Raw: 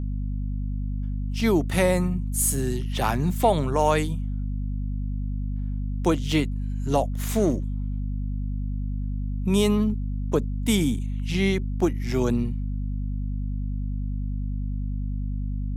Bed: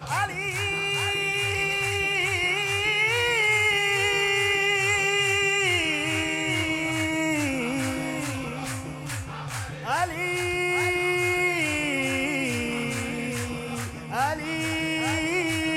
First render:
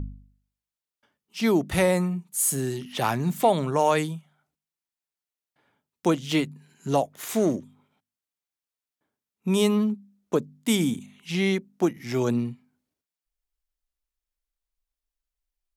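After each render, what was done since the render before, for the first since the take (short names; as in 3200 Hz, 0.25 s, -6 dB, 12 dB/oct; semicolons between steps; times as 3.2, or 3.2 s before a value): de-hum 50 Hz, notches 5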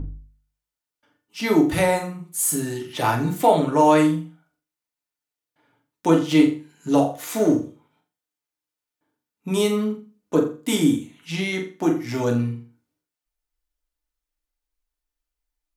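flutter echo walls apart 7.3 m, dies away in 0.35 s; FDN reverb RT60 0.34 s, low-frequency decay 0.85×, high-frequency decay 0.45×, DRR 1 dB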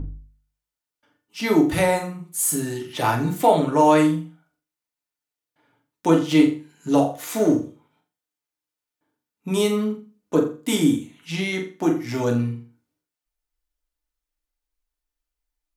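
nothing audible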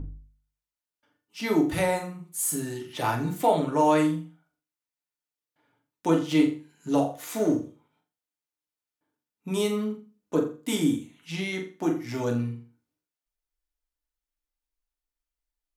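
gain -5.5 dB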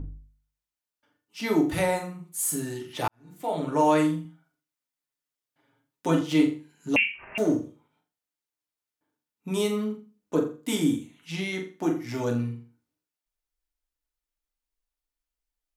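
3.08–3.73 fade in quadratic; 4.24–6.21 comb 7.4 ms, depth 64%; 6.96–7.38 inverted band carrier 3000 Hz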